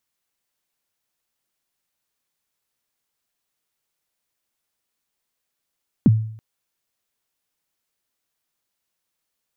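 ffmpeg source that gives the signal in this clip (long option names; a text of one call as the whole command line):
ffmpeg -f lavfi -i "aevalsrc='0.447*pow(10,-3*t/0.6)*sin(2*PI*(290*0.032/log(110/290)*(exp(log(110/290)*min(t,0.032)/0.032)-1)+110*max(t-0.032,0)))':duration=0.33:sample_rate=44100" out.wav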